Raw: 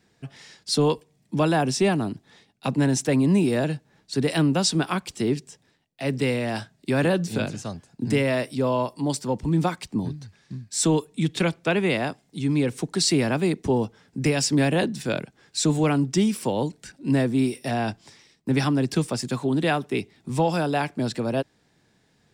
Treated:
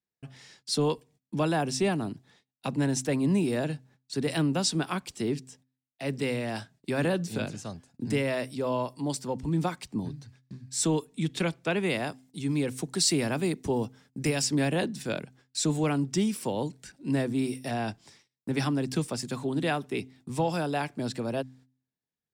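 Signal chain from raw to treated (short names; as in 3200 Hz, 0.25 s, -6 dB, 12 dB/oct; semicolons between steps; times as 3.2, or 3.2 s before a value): high shelf 7800 Hz +3 dB, from 11.83 s +10.5 dB, from 14.42 s +4 dB; gate -51 dBFS, range -27 dB; de-hum 129.5 Hz, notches 2; gain -5.5 dB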